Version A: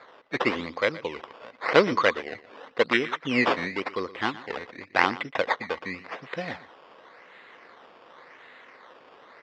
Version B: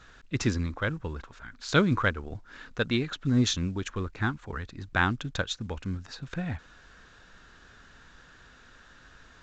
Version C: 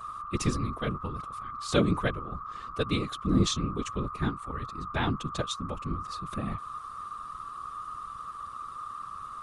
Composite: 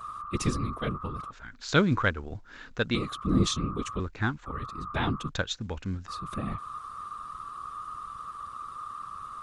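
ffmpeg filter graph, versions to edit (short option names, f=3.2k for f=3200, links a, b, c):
-filter_complex "[1:a]asplit=3[a][b][c];[2:a]asplit=4[d][e][f][g];[d]atrim=end=1.312[h];[a]atrim=start=1.308:end=2.952[i];[e]atrim=start=2.948:end=4.002[j];[b]atrim=start=3.998:end=4.462[k];[f]atrim=start=4.458:end=5.292[l];[c]atrim=start=5.288:end=6.082[m];[g]atrim=start=6.078[n];[h][i]acrossfade=d=0.004:c1=hsin:c2=hsin[o];[o][j]acrossfade=d=0.004:c1=hsin:c2=hsin[p];[p][k]acrossfade=d=0.004:c1=hsin:c2=hsin[q];[q][l]acrossfade=d=0.004:c1=hsin:c2=hsin[r];[r][m]acrossfade=d=0.004:c1=hsin:c2=hsin[s];[s][n]acrossfade=d=0.004:c1=hsin:c2=hsin"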